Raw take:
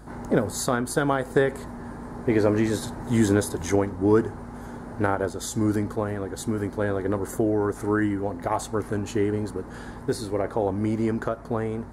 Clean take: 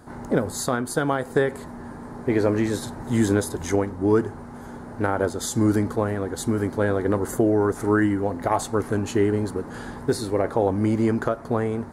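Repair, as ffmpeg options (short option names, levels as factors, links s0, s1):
-af "bandreject=f=54.8:t=h:w=4,bandreject=f=109.6:t=h:w=4,bandreject=f=164.4:t=h:w=4,bandreject=f=219.2:t=h:w=4,bandreject=f=274:t=h:w=4,bandreject=f=328.8:t=h:w=4,asetnsamples=n=441:p=0,asendcmd='5.15 volume volume 3.5dB',volume=1"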